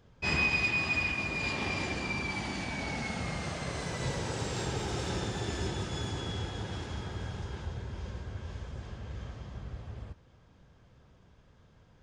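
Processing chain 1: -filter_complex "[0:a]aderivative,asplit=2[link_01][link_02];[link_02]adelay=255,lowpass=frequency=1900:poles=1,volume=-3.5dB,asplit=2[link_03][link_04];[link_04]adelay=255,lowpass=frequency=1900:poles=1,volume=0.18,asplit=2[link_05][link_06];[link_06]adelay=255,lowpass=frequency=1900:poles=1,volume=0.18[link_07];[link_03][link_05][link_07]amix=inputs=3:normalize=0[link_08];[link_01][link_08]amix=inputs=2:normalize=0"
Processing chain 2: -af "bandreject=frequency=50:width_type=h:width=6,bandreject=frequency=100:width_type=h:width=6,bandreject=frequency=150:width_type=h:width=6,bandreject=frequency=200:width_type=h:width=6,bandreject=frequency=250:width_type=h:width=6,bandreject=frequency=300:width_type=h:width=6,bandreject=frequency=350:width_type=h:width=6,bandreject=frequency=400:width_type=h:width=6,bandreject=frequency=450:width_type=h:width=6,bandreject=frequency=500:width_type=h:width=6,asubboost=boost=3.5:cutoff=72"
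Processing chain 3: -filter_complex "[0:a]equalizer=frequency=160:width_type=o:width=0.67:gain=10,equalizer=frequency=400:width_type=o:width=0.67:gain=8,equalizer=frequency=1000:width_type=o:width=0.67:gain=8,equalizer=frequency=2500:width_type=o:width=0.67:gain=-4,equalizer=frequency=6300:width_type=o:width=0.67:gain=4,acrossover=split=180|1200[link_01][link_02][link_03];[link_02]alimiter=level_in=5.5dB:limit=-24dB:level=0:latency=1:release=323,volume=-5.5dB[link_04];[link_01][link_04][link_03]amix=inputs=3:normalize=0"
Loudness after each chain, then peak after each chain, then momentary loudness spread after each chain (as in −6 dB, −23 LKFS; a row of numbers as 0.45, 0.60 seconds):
−41.0, −34.0, −33.0 LKFS; −27.0, −18.0, −16.5 dBFS; 24, 13, 10 LU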